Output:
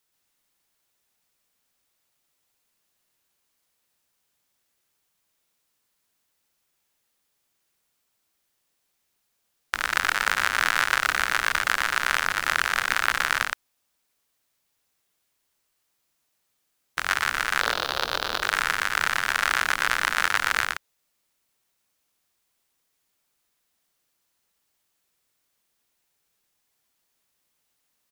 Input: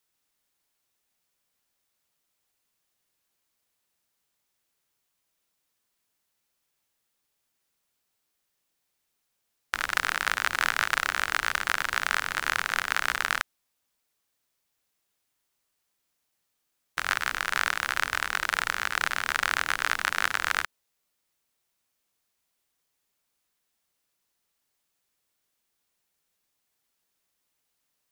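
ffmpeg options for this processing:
ffmpeg -i in.wav -filter_complex "[0:a]asettb=1/sr,asplit=3[link_01][link_02][link_03];[link_01]atrim=end=17.614[link_04];[link_02]atrim=start=17.61:end=18.42,asetpts=PTS-STARTPTS,afade=type=in:duration=0.004:curve=qsin,afade=type=out:start_time=0.806:duration=0.004:curve=qsin,equalizer=frequency=500:width_type=o:width=1:gain=11,equalizer=frequency=2000:width_type=o:width=1:gain=-12,equalizer=frequency=4000:width_type=o:width=1:gain=11,equalizer=frequency=8000:width_type=o:width=1:gain=-11[link_05];[link_03]atrim=start=18.416[link_06];[link_04][link_05]acrossfade=duration=0.004:curve1=hsin:curve2=qsin[link_07];[link_07][link_06]acrossfade=duration=0.004:curve1=qsin:curve2=hsin,aecho=1:1:119:0.668,volume=2dB" out.wav

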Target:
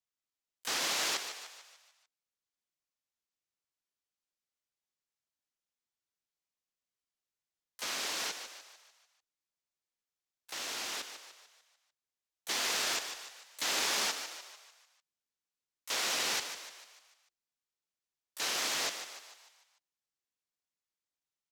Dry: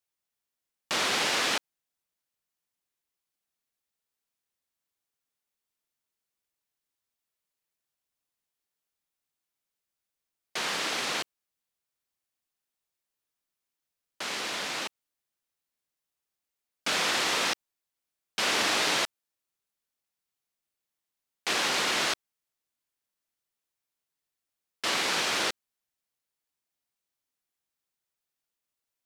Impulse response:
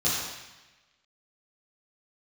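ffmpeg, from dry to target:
-filter_complex "[0:a]highshelf=frequency=7200:width_type=q:width=1.5:gain=-13,asplit=4[link_01][link_02][link_03][link_04];[link_02]asetrate=22050,aresample=44100,atempo=2,volume=-16dB[link_05];[link_03]asetrate=33038,aresample=44100,atempo=1.33484,volume=-15dB[link_06];[link_04]asetrate=88200,aresample=44100,atempo=0.5,volume=-9dB[link_07];[link_01][link_05][link_06][link_07]amix=inputs=4:normalize=0,asplit=7[link_08][link_09][link_10][link_11][link_12][link_13][link_14];[link_09]adelay=200,afreqshift=41,volume=-9dB[link_15];[link_10]adelay=400,afreqshift=82,volume=-15dB[link_16];[link_11]adelay=600,afreqshift=123,volume=-21dB[link_17];[link_12]adelay=800,afreqshift=164,volume=-27.1dB[link_18];[link_13]adelay=1000,afreqshift=205,volume=-33.1dB[link_19];[link_14]adelay=1200,afreqshift=246,volume=-39.1dB[link_20];[link_08][link_15][link_16][link_17][link_18][link_19][link_20]amix=inputs=7:normalize=0,asetrate=59535,aresample=44100,volume=-7.5dB"

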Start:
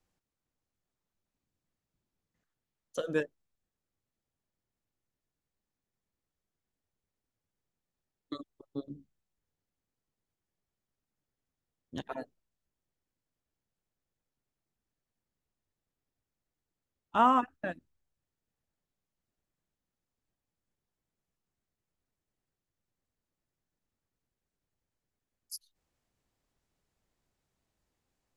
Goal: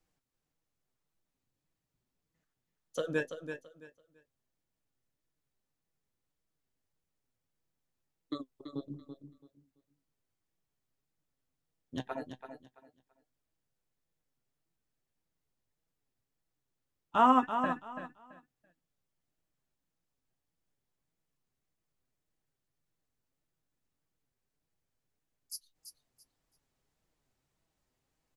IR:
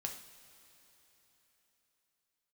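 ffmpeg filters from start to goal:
-af "flanger=delay=6.1:depth=1.8:regen=53:speed=1.7:shape=sinusoidal,aecho=1:1:334|668|1002:0.355|0.0816|0.0188,volume=4dB"

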